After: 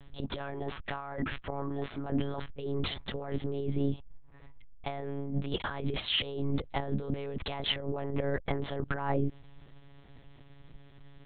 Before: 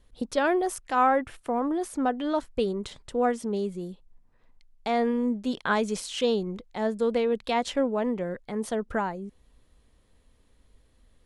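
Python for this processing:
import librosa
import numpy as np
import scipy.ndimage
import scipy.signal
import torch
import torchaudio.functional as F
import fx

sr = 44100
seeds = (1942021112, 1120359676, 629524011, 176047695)

y = fx.over_compress(x, sr, threshold_db=-35.0, ratio=-1.0)
y = fx.lpc_monotone(y, sr, seeds[0], pitch_hz=140.0, order=10)
y = y * 10.0 ** (2.0 / 20.0)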